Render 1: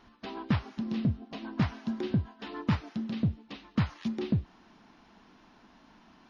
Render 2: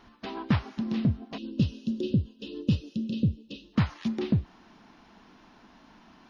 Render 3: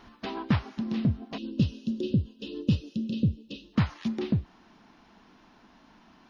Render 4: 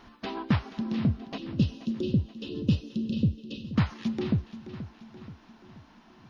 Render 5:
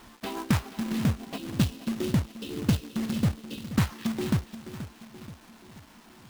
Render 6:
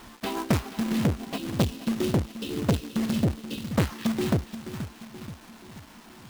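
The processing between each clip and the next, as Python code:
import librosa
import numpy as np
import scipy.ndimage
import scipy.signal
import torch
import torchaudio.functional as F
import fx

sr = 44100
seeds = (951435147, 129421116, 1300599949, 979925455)

y1 = fx.spec_box(x, sr, start_s=1.38, length_s=2.35, low_hz=590.0, high_hz=2500.0, gain_db=-25)
y1 = F.gain(torch.from_numpy(y1), 3.0).numpy()
y2 = fx.rider(y1, sr, range_db=4, speed_s=0.5)
y3 = fx.echo_feedback(y2, sr, ms=479, feedback_pct=52, wet_db=-13.5)
y4 = fx.quant_companded(y3, sr, bits=4)
y5 = fx.transformer_sat(y4, sr, knee_hz=460.0)
y5 = F.gain(torch.from_numpy(y5), 4.0).numpy()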